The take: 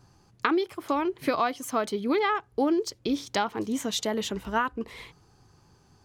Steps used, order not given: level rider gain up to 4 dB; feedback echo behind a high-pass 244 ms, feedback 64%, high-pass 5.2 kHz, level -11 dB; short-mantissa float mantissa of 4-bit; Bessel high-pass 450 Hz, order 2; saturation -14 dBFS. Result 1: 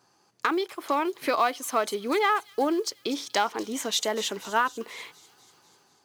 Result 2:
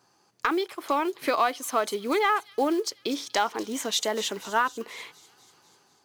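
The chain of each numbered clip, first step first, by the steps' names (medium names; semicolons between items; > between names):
saturation > Bessel high-pass > short-mantissa float > feedback echo behind a high-pass > level rider; feedback echo behind a high-pass > short-mantissa float > Bessel high-pass > saturation > level rider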